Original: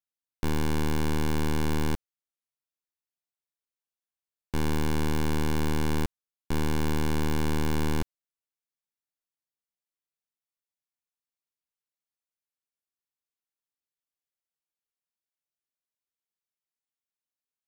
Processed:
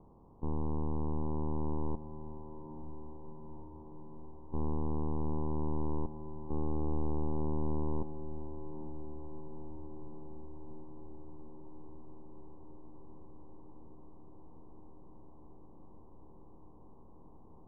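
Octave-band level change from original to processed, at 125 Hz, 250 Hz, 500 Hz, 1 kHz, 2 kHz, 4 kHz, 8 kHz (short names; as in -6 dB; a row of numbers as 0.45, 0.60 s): -6.5 dB, -7.0 dB, -5.5 dB, -7.0 dB, under -40 dB, under -40 dB, under -35 dB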